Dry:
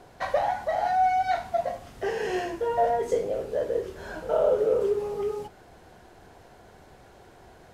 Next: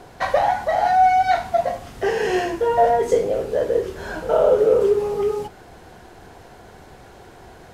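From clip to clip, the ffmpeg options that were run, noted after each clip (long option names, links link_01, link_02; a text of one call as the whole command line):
ffmpeg -i in.wav -af "equalizer=frequency=600:width_type=o:width=0.24:gain=-3,volume=8dB" out.wav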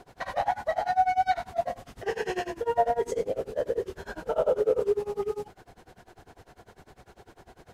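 ffmpeg -i in.wav -af "tremolo=f=10:d=0.95,volume=-5dB" out.wav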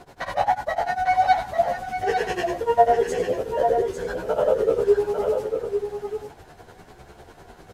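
ffmpeg -i in.wav -filter_complex "[0:a]asplit=2[link_01][link_02];[link_02]aecho=0:1:849:0.473[link_03];[link_01][link_03]amix=inputs=2:normalize=0,asplit=2[link_04][link_05];[link_05]adelay=11,afreqshift=1.1[link_06];[link_04][link_06]amix=inputs=2:normalize=1,volume=8.5dB" out.wav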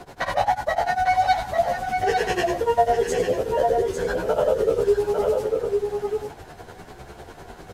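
ffmpeg -i in.wav -filter_complex "[0:a]acrossover=split=140|3000[link_01][link_02][link_03];[link_02]acompressor=threshold=-26dB:ratio=2[link_04];[link_01][link_04][link_03]amix=inputs=3:normalize=0,volume=5dB" out.wav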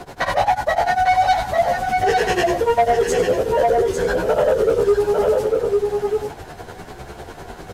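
ffmpeg -i in.wav -af "asoftclip=type=tanh:threshold=-15dB,volume=6dB" out.wav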